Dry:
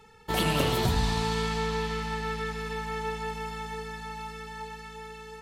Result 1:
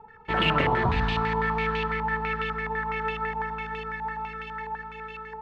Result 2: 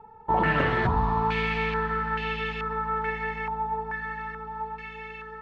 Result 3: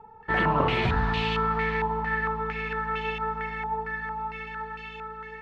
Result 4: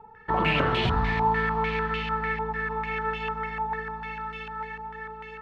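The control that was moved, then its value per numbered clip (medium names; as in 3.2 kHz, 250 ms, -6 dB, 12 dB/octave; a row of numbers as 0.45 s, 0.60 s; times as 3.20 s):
step-sequenced low-pass, rate: 12 Hz, 2.3 Hz, 4.4 Hz, 6.7 Hz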